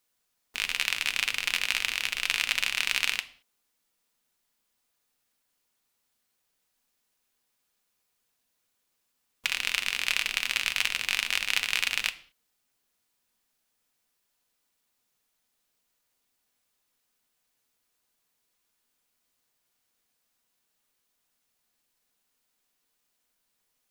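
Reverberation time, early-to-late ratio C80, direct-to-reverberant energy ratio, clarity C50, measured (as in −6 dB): non-exponential decay, 20.5 dB, 8.5 dB, 17.0 dB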